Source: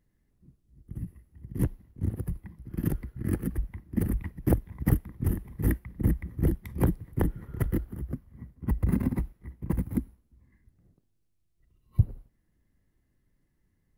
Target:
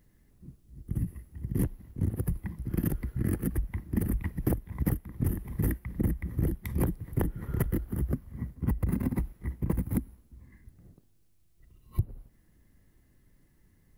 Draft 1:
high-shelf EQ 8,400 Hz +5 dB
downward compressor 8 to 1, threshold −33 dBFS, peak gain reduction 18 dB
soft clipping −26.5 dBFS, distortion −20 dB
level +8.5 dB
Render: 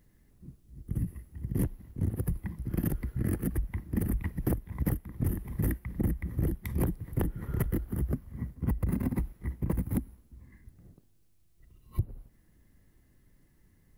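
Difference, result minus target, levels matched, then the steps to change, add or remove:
soft clipping: distortion +13 dB
change: soft clipping −18.5 dBFS, distortion −33 dB

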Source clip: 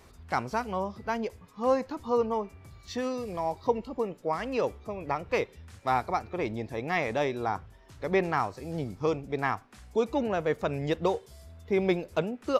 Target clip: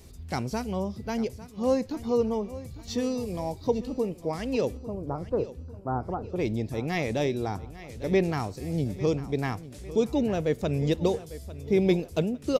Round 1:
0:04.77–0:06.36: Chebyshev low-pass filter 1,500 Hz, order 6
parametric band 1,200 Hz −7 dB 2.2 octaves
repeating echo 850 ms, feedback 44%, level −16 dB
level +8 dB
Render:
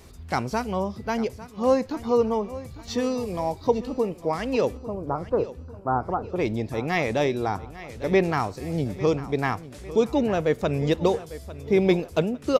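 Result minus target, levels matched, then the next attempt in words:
1,000 Hz band +4.0 dB
0:04.77–0:06.36: Chebyshev low-pass filter 1,500 Hz, order 6
parametric band 1,200 Hz −16.5 dB 2.2 octaves
repeating echo 850 ms, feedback 44%, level −16 dB
level +8 dB

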